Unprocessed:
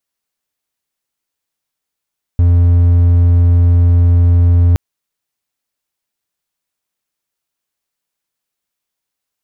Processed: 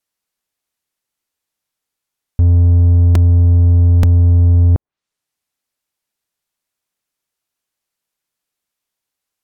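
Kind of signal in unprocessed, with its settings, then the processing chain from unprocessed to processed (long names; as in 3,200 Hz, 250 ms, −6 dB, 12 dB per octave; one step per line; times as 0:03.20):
tone triangle 86.8 Hz −4 dBFS 2.37 s
treble cut that deepens with the level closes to 750 Hz, closed at −11 dBFS
regular buffer underruns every 0.88 s, samples 128, repeat, from 0:00.51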